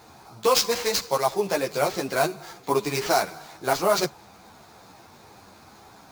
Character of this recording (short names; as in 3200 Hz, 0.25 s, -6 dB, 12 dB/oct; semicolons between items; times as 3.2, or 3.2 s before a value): aliases and images of a low sample rate 11000 Hz, jitter 20%; a shimmering, thickened sound